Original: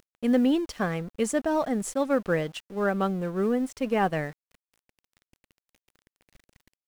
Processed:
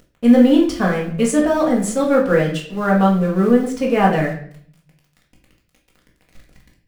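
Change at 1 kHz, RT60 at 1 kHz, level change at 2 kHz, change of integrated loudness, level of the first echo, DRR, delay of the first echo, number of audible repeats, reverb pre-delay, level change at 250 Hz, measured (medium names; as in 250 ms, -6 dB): +9.5 dB, 0.50 s, +9.0 dB, +10.5 dB, no echo, -2.5 dB, no echo, no echo, 4 ms, +11.5 dB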